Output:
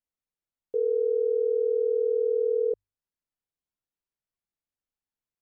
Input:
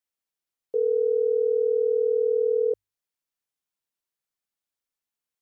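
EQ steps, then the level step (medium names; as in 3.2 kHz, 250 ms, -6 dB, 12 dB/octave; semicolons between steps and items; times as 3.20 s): tilt EQ -2.5 dB/octave; -5.0 dB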